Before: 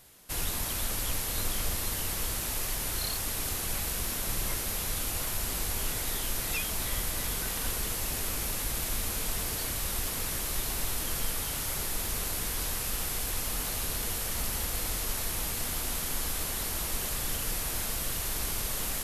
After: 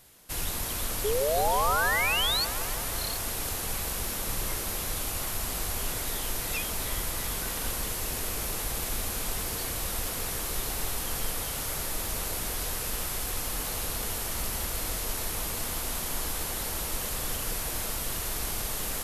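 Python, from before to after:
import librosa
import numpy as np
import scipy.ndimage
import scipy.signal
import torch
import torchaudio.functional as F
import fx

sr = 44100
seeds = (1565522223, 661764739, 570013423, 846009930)

p1 = fx.spec_paint(x, sr, seeds[0], shape='rise', start_s=1.04, length_s=1.41, low_hz=400.0, high_hz=4600.0, level_db=-28.0)
y = p1 + fx.echo_wet_bandpass(p1, sr, ms=161, feedback_pct=75, hz=660.0, wet_db=-4.5, dry=0)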